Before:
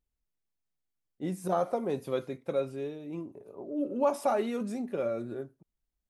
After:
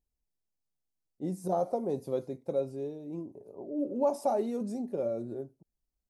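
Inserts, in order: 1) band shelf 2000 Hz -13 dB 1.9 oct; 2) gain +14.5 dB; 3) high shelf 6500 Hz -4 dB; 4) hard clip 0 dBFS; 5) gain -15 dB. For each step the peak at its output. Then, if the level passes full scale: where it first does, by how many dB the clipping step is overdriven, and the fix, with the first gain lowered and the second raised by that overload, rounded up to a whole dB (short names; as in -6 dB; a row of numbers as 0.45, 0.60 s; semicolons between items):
-16.5, -2.0, -2.0, -2.0, -17.0 dBFS; no overload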